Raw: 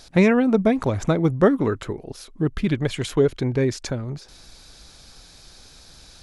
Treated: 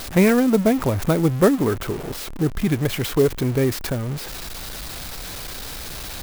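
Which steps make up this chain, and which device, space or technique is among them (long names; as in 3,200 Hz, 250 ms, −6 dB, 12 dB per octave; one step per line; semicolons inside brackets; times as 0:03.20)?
early CD player with a faulty converter (converter with a step at zero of −27.5 dBFS; converter with an unsteady clock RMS 0.038 ms)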